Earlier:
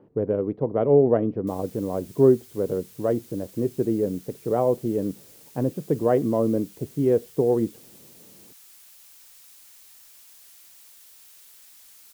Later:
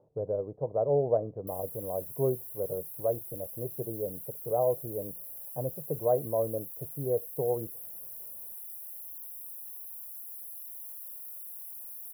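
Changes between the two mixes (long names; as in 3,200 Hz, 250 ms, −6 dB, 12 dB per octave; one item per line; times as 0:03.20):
speech −8.0 dB
master: add drawn EQ curve 150 Hz 0 dB, 230 Hz −13 dB, 360 Hz −7 dB, 600 Hz +7 dB, 990 Hz −2 dB, 2,900 Hz −30 dB, 5,200 Hz −21 dB, 7,500 Hz −24 dB, 11,000 Hz +9 dB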